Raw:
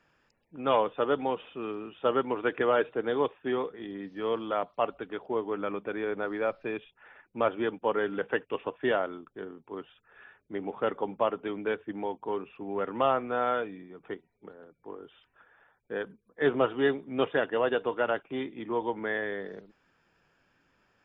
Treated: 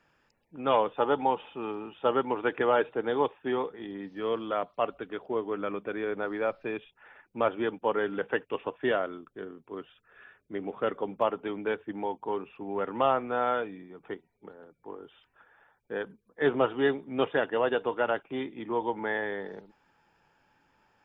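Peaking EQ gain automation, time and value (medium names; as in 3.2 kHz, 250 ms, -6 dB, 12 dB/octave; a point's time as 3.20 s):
peaking EQ 860 Hz 0.2 oct
+3 dB
from 0.97 s +14.5 dB
from 1.93 s +7.5 dB
from 4.18 s -4 dB
from 6.17 s +2 dB
from 8.90 s -7 dB
from 11.22 s +4.5 dB
from 18.99 s +13.5 dB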